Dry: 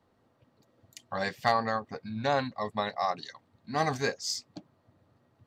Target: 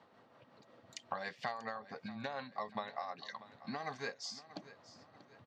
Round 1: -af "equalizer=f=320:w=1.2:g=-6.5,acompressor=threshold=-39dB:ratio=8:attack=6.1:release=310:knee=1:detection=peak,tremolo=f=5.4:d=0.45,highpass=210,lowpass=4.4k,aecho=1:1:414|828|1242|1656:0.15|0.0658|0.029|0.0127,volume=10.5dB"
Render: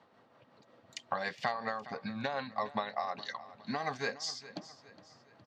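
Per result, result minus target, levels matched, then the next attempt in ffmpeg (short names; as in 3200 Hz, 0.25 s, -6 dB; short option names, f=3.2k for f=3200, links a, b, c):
echo 0.224 s early; compressor: peak gain reduction -6 dB
-af "equalizer=f=320:w=1.2:g=-6.5,acompressor=threshold=-39dB:ratio=8:attack=6.1:release=310:knee=1:detection=peak,tremolo=f=5.4:d=0.45,highpass=210,lowpass=4.4k,aecho=1:1:638|1276|1914|2552:0.15|0.0658|0.029|0.0127,volume=10.5dB"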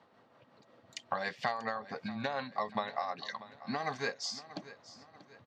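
compressor: peak gain reduction -6 dB
-af "equalizer=f=320:w=1.2:g=-6.5,acompressor=threshold=-46dB:ratio=8:attack=6.1:release=310:knee=1:detection=peak,tremolo=f=5.4:d=0.45,highpass=210,lowpass=4.4k,aecho=1:1:638|1276|1914|2552:0.15|0.0658|0.029|0.0127,volume=10.5dB"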